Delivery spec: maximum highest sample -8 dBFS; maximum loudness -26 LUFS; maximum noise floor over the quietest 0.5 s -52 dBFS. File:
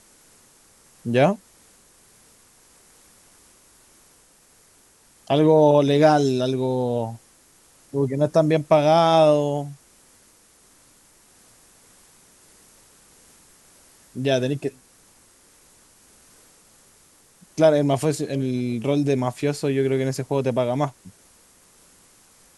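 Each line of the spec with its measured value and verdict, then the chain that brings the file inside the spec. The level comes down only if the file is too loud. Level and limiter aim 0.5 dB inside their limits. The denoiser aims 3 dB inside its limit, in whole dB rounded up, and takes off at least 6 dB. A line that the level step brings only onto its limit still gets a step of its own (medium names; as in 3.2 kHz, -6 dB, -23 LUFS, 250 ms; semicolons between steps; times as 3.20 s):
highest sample -4.0 dBFS: fail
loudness -20.5 LUFS: fail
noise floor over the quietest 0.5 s -56 dBFS: pass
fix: trim -6 dB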